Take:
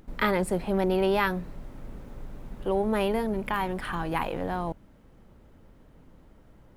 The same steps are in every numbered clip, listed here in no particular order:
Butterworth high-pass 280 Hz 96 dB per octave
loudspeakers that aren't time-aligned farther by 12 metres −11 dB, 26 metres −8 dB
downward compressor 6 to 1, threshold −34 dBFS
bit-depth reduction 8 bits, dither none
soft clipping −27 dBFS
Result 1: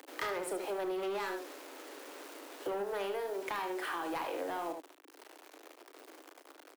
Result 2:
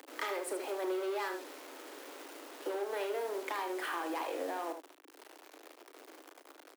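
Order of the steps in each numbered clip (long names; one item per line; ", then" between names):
bit-depth reduction, then Butterworth high-pass, then soft clipping, then loudspeakers that aren't time-aligned, then downward compressor
soft clipping, then bit-depth reduction, then Butterworth high-pass, then downward compressor, then loudspeakers that aren't time-aligned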